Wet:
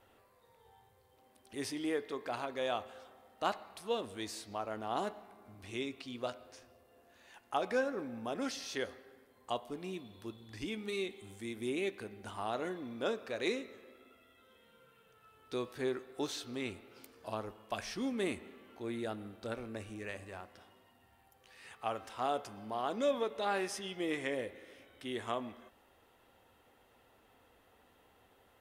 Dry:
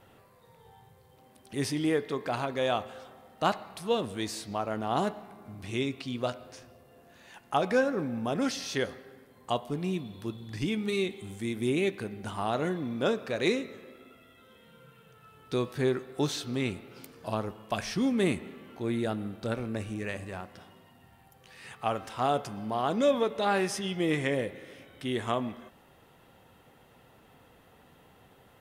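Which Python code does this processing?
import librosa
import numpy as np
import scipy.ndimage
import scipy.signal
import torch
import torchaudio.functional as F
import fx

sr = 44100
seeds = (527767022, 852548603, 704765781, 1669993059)

y = fx.peak_eq(x, sr, hz=150.0, db=-13.5, octaves=0.76)
y = y * librosa.db_to_amplitude(-6.5)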